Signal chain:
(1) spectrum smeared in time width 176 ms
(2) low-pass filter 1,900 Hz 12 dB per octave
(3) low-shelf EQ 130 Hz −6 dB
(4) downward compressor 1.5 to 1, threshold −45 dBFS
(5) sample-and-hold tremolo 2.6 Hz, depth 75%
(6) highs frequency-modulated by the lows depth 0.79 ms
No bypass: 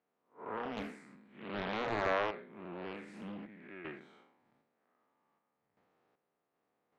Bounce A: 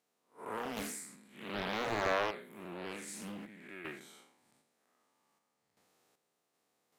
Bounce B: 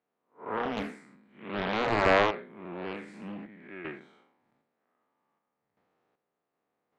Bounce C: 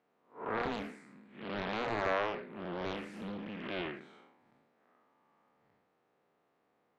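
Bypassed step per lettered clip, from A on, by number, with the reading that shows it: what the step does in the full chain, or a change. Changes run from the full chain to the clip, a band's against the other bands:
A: 2, 4 kHz band +4.5 dB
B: 4, average gain reduction 5.0 dB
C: 5, change in crest factor −2.0 dB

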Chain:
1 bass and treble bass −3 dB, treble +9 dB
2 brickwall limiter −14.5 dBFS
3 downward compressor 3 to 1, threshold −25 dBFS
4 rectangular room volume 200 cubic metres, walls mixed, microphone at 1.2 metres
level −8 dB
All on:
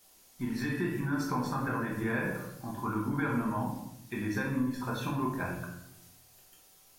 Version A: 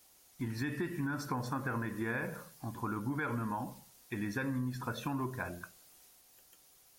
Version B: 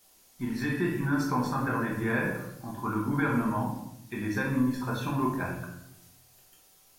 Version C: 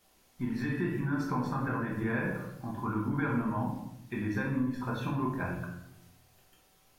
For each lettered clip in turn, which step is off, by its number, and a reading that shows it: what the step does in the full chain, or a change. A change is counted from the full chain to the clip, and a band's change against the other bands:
4, change in integrated loudness −4.5 LU
3, average gain reduction 1.5 dB
1, 4 kHz band −4.5 dB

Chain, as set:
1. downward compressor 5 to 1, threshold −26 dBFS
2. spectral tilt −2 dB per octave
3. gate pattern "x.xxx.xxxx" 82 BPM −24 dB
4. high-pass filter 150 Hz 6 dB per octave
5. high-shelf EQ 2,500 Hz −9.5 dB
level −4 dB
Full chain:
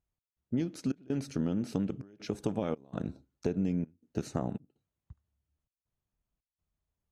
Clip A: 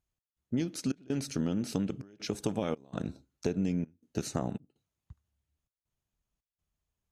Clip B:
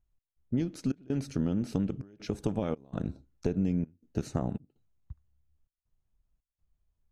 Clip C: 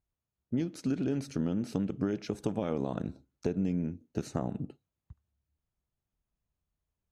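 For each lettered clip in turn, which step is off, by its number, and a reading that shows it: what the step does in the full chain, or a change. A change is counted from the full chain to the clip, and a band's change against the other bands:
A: 5, 8 kHz band +7.5 dB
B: 4, 125 Hz band +3.0 dB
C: 3, change in integrated loudness +1.0 LU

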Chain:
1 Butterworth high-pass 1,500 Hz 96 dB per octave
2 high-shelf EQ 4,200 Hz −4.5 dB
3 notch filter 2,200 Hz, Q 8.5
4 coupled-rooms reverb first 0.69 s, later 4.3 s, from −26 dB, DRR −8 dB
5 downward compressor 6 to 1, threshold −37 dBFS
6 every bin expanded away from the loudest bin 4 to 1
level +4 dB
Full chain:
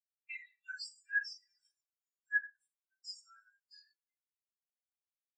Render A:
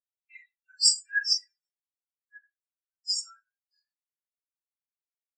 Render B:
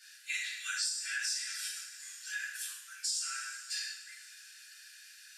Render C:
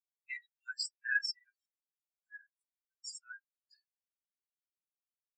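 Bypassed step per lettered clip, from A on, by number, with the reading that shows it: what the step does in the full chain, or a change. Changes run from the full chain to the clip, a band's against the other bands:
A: 5, average gain reduction 2.5 dB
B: 6, change in crest factor −5.0 dB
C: 4, change in momentary loudness spread +5 LU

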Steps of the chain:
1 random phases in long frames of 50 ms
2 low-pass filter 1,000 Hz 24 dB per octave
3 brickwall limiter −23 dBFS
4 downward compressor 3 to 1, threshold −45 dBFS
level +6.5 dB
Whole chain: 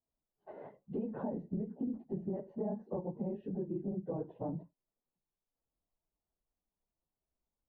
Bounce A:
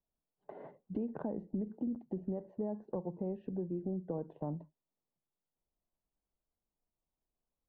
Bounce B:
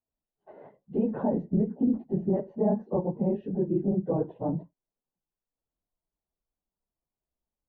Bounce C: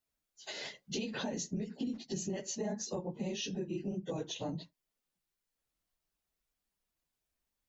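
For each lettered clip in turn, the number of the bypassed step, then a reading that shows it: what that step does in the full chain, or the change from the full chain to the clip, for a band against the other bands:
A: 1, change in momentary loudness spread +5 LU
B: 4, average gain reduction 9.0 dB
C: 2, change in momentary loudness spread −1 LU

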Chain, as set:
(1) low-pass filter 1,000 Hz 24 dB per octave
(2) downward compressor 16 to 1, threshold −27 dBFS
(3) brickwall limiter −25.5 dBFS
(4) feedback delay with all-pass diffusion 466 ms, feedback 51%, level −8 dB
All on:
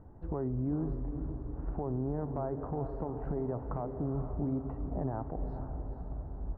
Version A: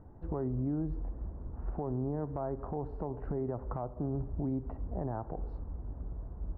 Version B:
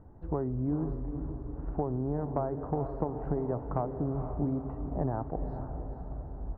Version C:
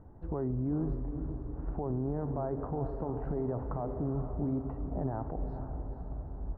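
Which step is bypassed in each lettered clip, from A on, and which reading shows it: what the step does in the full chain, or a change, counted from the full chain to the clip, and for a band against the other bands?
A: 4, echo-to-direct ratio −6.5 dB to none audible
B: 3, change in crest factor +4.5 dB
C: 2, average gain reduction 3.5 dB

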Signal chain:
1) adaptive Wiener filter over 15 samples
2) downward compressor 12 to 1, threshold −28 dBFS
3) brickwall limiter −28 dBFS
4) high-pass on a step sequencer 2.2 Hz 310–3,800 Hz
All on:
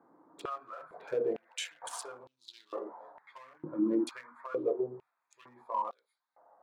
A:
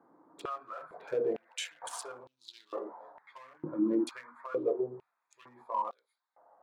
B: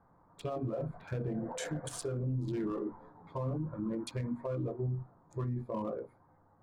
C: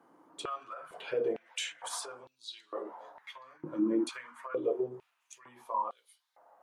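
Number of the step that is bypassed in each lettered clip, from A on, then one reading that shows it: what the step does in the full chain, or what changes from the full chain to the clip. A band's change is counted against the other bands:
2, average gain reduction 3.5 dB
4, 125 Hz band +24.5 dB
1, 4 kHz band +3.5 dB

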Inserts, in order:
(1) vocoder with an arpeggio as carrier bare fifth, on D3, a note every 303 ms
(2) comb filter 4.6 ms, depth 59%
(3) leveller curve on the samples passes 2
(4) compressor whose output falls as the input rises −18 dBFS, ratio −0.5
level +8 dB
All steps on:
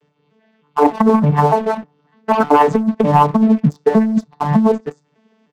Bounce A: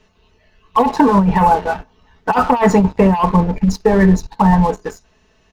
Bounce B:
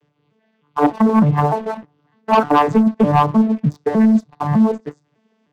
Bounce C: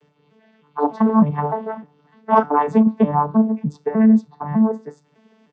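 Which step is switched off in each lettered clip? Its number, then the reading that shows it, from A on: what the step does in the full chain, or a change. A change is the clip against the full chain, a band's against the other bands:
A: 1, 2 kHz band +3.0 dB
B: 2, 500 Hz band −3.0 dB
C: 3, 250 Hz band +5.5 dB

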